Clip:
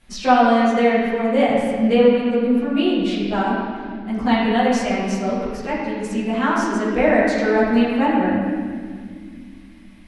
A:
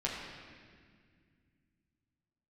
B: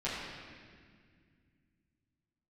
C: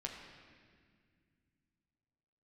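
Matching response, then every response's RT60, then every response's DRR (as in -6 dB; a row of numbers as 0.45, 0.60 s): B; 1.9, 2.0, 2.0 s; -5.0, -11.0, 0.0 dB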